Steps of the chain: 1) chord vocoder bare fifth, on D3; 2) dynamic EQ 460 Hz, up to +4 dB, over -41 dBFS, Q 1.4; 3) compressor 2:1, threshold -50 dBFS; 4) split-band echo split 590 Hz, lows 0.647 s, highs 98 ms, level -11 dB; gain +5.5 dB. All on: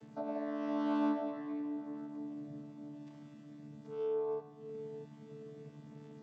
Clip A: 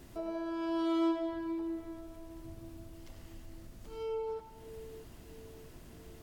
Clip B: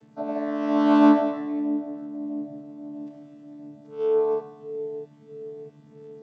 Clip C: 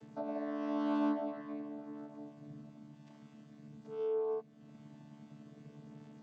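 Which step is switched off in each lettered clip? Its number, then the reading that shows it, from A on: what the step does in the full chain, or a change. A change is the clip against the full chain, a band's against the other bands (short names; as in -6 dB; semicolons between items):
1, momentary loudness spread change +3 LU; 3, mean gain reduction 7.5 dB; 4, echo-to-direct -9.5 dB to none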